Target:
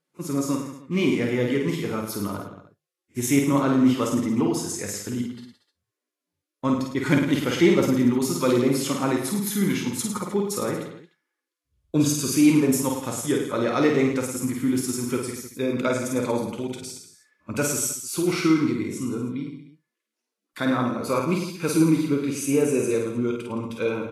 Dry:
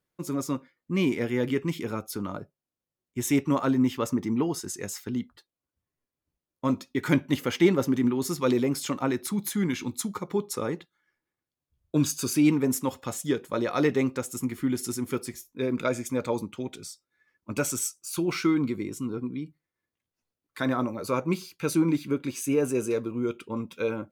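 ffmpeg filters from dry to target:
-af "aecho=1:1:50|105|165.5|232|305.3:0.631|0.398|0.251|0.158|0.1,volume=2dB" -ar 32000 -c:a libvorbis -b:a 32k

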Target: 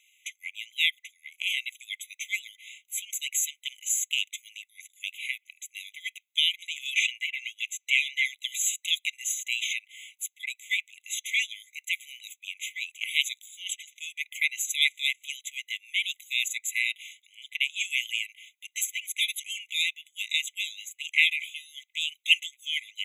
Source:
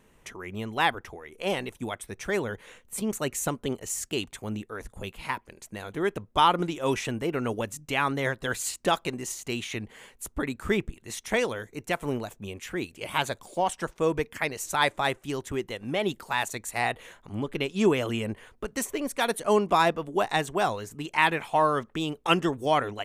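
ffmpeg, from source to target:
-filter_complex "[0:a]asettb=1/sr,asplit=3[a][b][c];[a]atrim=end=6.924[d];[b]atrim=start=6.92:end=8.25,asetpts=PTS-STARTPTS,afade=t=in:d=0.004:c=qsin,afade=t=out:st=1.326:d=0.004:c=qsin,asplit=2[e][f];[f]highpass=f=720:p=1,volume=16dB,asoftclip=type=tanh:threshold=-10dB[g];[e][g]amix=inputs=2:normalize=0,lowpass=f=1.7k:p=1,volume=-6dB[h];[c]atrim=start=8.246[i];[d][h]acrossfade=d=0.004:c1=hsin:c2=qsin[j];[j][i]acrossfade=d=0.004:c1=qsin:c2=hsin,afftfilt=real='re*eq(mod(floor(b*sr/1024/2000),2),1)':imag='im*eq(mod(floor(b*sr/1024/2000),2),1)':win_size=1024:overlap=0.75,volume=7.5dB"

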